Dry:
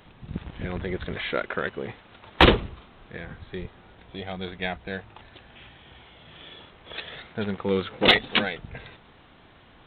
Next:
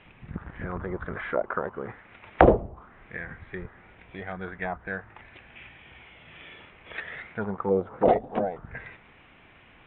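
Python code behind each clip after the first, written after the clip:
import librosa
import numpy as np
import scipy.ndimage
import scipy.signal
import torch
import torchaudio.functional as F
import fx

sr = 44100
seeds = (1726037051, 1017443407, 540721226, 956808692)

y = fx.air_absorb(x, sr, metres=130.0)
y = fx.envelope_lowpass(y, sr, base_hz=670.0, top_hz=2600.0, q=3.5, full_db=-22.0, direction='down')
y = F.gain(torch.from_numpy(y), -3.0).numpy()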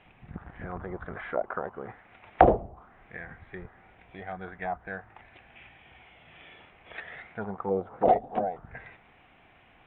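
y = fx.peak_eq(x, sr, hz=740.0, db=8.0, octaves=0.36)
y = F.gain(torch.from_numpy(y), -5.0).numpy()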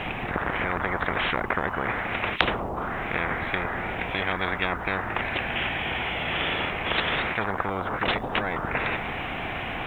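y = fx.spectral_comp(x, sr, ratio=10.0)
y = F.gain(torch.from_numpy(y), 1.0).numpy()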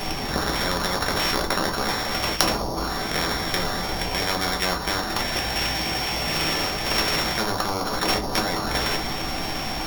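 y = np.r_[np.sort(x[:len(x) // 8 * 8].reshape(-1, 8), axis=1).ravel(), x[len(x) // 8 * 8:]]
y = fx.room_shoebox(y, sr, seeds[0], volume_m3=120.0, walls='furnished', distance_m=1.2)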